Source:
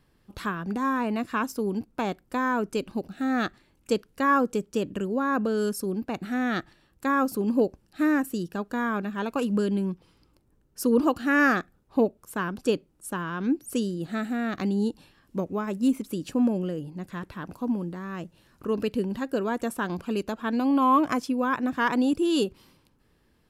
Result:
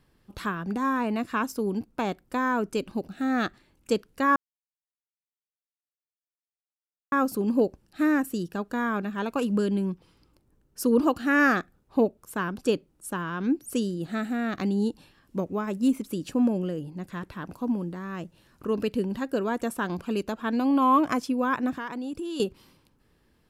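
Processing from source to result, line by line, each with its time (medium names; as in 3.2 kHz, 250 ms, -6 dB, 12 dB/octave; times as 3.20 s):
4.36–7.12 s: mute
21.73–22.40 s: compression, threshold -31 dBFS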